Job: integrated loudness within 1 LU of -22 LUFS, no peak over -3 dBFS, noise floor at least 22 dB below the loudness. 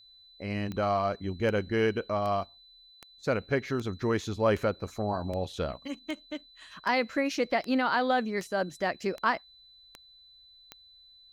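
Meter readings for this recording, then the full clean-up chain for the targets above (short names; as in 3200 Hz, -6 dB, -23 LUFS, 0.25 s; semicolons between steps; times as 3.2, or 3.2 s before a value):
clicks 14; steady tone 4000 Hz; tone level -54 dBFS; loudness -30.0 LUFS; peak -12.5 dBFS; loudness target -22.0 LUFS
-> de-click; notch 4000 Hz, Q 30; gain +8 dB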